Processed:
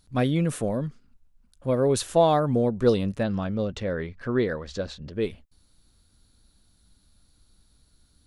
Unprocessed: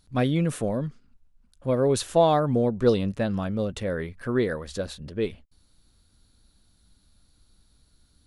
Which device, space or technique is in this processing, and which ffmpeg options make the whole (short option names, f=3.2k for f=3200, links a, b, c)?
exciter from parts: -filter_complex "[0:a]asplit=2[a][b];[b]highpass=4.5k,asoftclip=type=tanh:threshold=-23.5dB,volume=-13.5dB[c];[a][c]amix=inputs=2:normalize=0,asettb=1/sr,asplit=3[d][e][f];[d]atrim=end=3.234[g];[e]atrim=start=3.23:end=5.13,asetpts=PTS-STARTPTS,afade=t=in:d=0.004:c=qsin,afade=t=out:st=1.896:d=0.004:c=qsin,lowpass=f=6.4k:w=0.5412,lowpass=f=6.4k:w=1.3066[h];[f]atrim=start=5.126[i];[g][h]acrossfade=d=0.004:c1=hsin:c2=qsin[j];[j][i]acrossfade=d=0.004:c1=qsin:c2=hsin"